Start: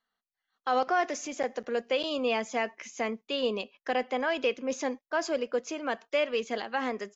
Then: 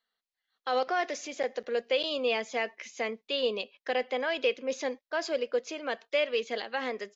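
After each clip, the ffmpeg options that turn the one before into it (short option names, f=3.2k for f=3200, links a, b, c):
-af "equalizer=f=500:t=o:w=1:g=8,equalizer=f=2k:t=o:w=1:g=6,equalizer=f=4k:t=o:w=1:g=11,volume=-7.5dB"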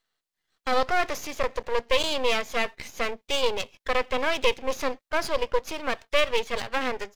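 -af "aeval=exprs='max(val(0),0)':c=same,volume=8.5dB"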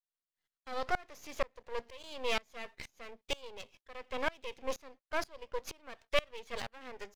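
-af "aeval=exprs='val(0)*pow(10,-27*if(lt(mod(-2.1*n/s,1),2*abs(-2.1)/1000),1-mod(-2.1*n/s,1)/(2*abs(-2.1)/1000),(mod(-2.1*n/s,1)-2*abs(-2.1)/1000)/(1-2*abs(-2.1)/1000))/20)':c=same,volume=-4.5dB"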